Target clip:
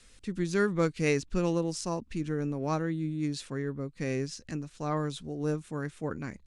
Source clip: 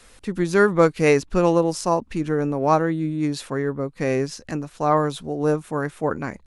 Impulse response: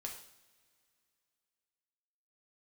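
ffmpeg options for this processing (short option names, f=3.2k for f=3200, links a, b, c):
-af "lowpass=f=9.3k:w=0.5412,lowpass=f=9.3k:w=1.3066,equalizer=f=800:w=0.65:g=-11,volume=-5dB"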